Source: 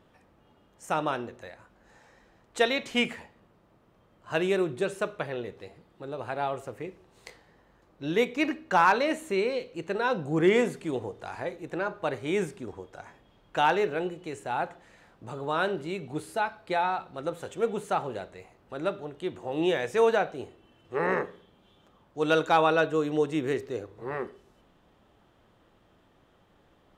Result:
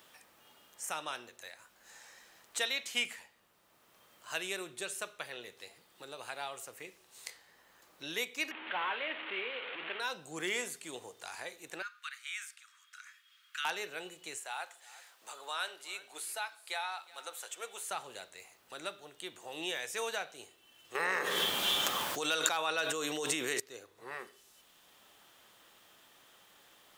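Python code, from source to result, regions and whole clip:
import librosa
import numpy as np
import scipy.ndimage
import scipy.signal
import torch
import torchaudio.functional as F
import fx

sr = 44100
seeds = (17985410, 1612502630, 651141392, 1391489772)

y = fx.chain(x, sr, fx.delta_mod(bps=16000, step_db=-27.5),
    fx.highpass(hz=250.0, slope=12), at=(8.51, 10.0))
y = fx.chain(y, sr, fx.steep_highpass(hz=1200.0, slope=72),
    fx.high_shelf(hz=4000.0, db=-10.0), at=(11.82, 13.65))
y = fx.chain(y, sr, fx.highpass(hz=590.0, slope=12),
    fx.echo_single(ms=364, db=-22.0), at=(14.37, 17.91))
y = fx.chain(y, sr, fx.low_shelf(hz=130.0, db=-7.0),
    fx.env_flatten(amount_pct=100), at=(20.95, 23.6))
y = scipy.signal.lfilter([1.0, -0.97], [1.0], y)
y = fx.band_squash(y, sr, depth_pct=40)
y = F.gain(torch.from_numpy(y), 6.0).numpy()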